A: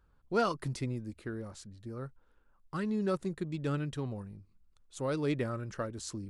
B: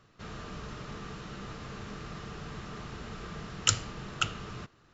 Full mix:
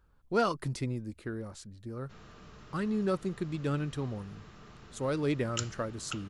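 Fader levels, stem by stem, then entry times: +1.5 dB, -10.5 dB; 0.00 s, 1.90 s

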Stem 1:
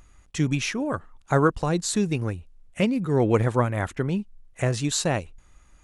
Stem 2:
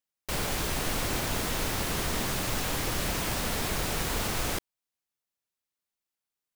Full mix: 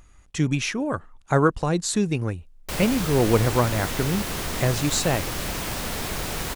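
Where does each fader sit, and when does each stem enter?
+1.0 dB, +1.0 dB; 0.00 s, 2.40 s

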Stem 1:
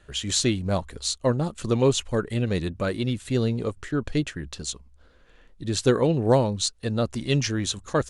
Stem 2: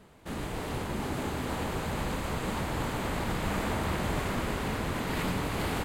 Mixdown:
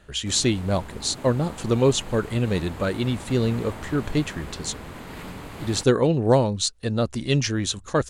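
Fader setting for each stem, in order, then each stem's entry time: +1.5 dB, -6.5 dB; 0.00 s, 0.00 s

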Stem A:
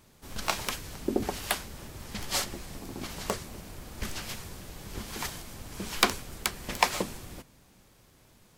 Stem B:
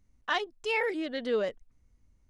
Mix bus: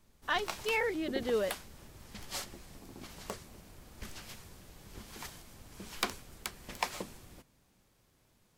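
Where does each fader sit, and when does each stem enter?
-10.0 dB, -2.5 dB; 0.00 s, 0.00 s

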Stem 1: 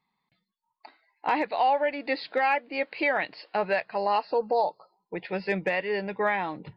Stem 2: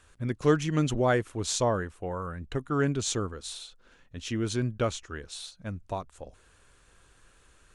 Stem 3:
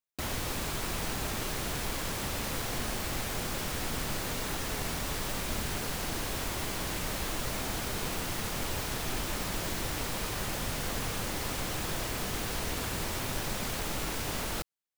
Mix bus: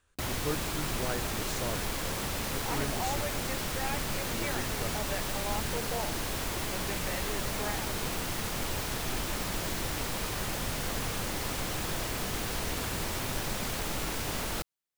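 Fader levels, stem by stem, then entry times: -13.0 dB, -12.0 dB, +0.5 dB; 1.40 s, 0.00 s, 0.00 s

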